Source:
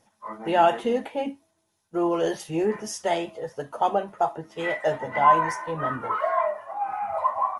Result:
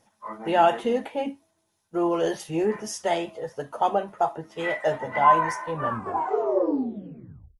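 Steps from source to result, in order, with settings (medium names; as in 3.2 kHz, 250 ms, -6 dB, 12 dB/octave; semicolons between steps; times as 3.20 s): tape stop on the ending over 1.86 s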